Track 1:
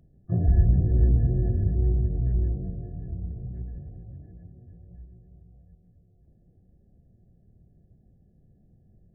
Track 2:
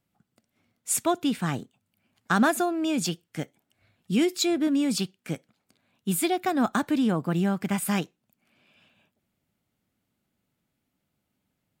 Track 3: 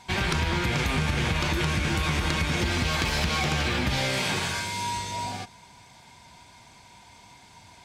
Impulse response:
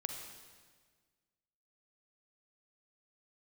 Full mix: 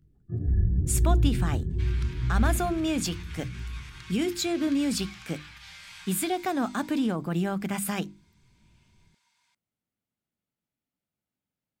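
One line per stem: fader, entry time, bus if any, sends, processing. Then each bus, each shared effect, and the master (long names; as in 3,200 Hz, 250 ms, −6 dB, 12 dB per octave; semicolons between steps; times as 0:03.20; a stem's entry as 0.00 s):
−4.5 dB, 0.00 s, send −4 dB, flat-topped bell 730 Hz −14 dB 1.2 octaves; micro pitch shift up and down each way 28 cents
−0.5 dB, 0.00 s, no send, noise gate −57 dBFS, range −12 dB; mains-hum notches 50/100/150/200/250/300/350 Hz; brickwall limiter −18.5 dBFS, peak gain reduction 8.5 dB
−17.5 dB, 1.70 s, no send, high-pass filter 1,100 Hz 24 dB per octave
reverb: on, RT60 1.6 s, pre-delay 39 ms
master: no processing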